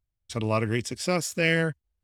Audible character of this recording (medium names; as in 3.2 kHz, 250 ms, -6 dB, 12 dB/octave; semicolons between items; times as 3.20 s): noise floor -83 dBFS; spectral tilt -4.5 dB/octave